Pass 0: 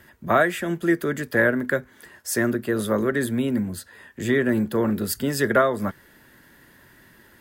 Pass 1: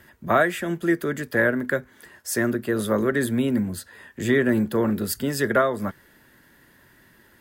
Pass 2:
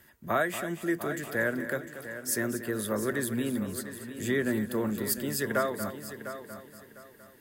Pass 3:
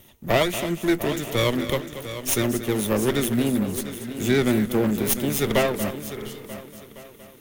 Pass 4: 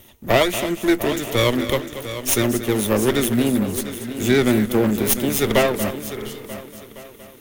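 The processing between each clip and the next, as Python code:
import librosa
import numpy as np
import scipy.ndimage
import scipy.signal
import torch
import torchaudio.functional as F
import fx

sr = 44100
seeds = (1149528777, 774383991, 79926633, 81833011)

y1 = fx.rider(x, sr, range_db=10, speed_s=2.0)
y2 = fx.high_shelf(y1, sr, hz=5400.0, db=9.5)
y2 = fx.echo_heads(y2, sr, ms=234, heads='first and third', feedback_pct=43, wet_db=-12)
y2 = F.gain(torch.from_numpy(y2), -8.5).numpy()
y3 = fx.lower_of_two(y2, sr, delay_ms=0.32)
y3 = fx.spec_repair(y3, sr, seeds[0], start_s=6.19, length_s=0.23, low_hz=240.0, high_hz=2800.0, source='both')
y3 = F.gain(torch.from_numpy(y3), 8.5).numpy()
y4 = fx.peak_eq(y3, sr, hz=160.0, db=-11.5, octaves=0.24)
y4 = F.gain(torch.from_numpy(y4), 4.0).numpy()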